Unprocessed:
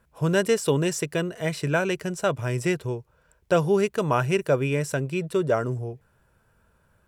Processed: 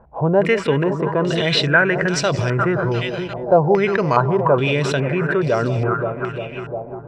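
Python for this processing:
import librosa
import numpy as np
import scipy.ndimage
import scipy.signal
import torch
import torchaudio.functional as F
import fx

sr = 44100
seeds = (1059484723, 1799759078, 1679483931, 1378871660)

p1 = fx.echo_alternate(x, sr, ms=175, hz=820.0, feedback_pct=80, wet_db=-12.5)
p2 = fx.over_compress(p1, sr, threshold_db=-32.0, ratio=-1.0)
p3 = p1 + F.gain(torch.from_numpy(p2), 2.0).numpy()
p4 = fx.resample_bad(p3, sr, factor=8, down='filtered', up='hold', at=(2.73, 4.41))
p5 = fx.filter_held_lowpass(p4, sr, hz=2.4, low_hz=800.0, high_hz=4700.0)
y = F.gain(torch.from_numpy(p5), 2.0).numpy()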